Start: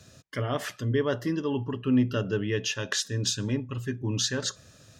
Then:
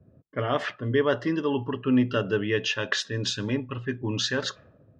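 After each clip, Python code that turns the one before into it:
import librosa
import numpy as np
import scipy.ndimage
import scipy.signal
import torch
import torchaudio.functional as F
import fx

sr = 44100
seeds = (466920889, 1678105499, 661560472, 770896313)

y = fx.env_lowpass(x, sr, base_hz=300.0, full_db=-24.5)
y = scipy.signal.sosfilt(scipy.signal.butter(2, 3500.0, 'lowpass', fs=sr, output='sos'), y)
y = fx.low_shelf(y, sr, hz=250.0, db=-9.5)
y = y * 10.0 ** (6.0 / 20.0)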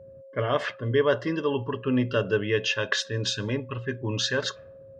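y = x + 0.34 * np.pad(x, (int(1.9 * sr / 1000.0), 0))[:len(x)]
y = y + 10.0 ** (-45.0 / 20.0) * np.sin(2.0 * np.pi * 540.0 * np.arange(len(y)) / sr)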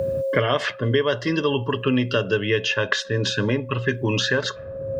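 y = fx.band_squash(x, sr, depth_pct=100)
y = y * 10.0 ** (3.5 / 20.0)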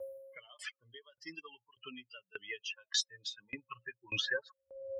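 y = fx.bin_expand(x, sr, power=3.0)
y = fx.filter_sweep_bandpass(y, sr, from_hz=5500.0, to_hz=550.0, start_s=3.11, end_s=4.78, q=1.0)
y = fx.tremolo_decay(y, sr, direction='decaying', hz=1.7, depth_db=28)
y = y * 10.0 ** (7.5 / 20.0)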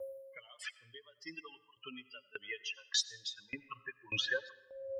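y = fx.rev_freeverb(x, sr, rt60_s=0.81, hf_ratio=0.85, predelay_ms=50, drr_db=17.5)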